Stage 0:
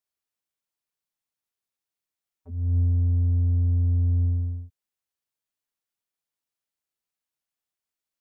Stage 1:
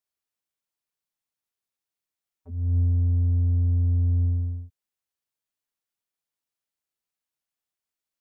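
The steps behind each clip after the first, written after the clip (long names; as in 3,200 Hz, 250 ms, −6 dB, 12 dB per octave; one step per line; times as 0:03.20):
no processing that can be heard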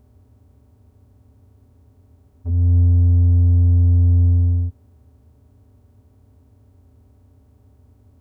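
compressor on every frequency bin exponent 0.4
level +7.5 dB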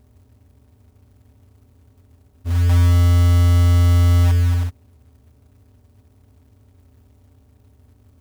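floating-point word with a short mantissa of 2 bits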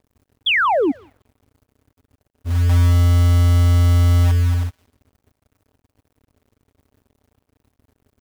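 sound drawn into the spectrogram fall, 0:00.46–0:00.92, 250–3,600 Hz −16 dBFS
feedback echo with a high-pass in the loop 182 ms, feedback 26%, high-pass 770 Hz, level −20 dB
dead-zone distortion −49.5 dBFS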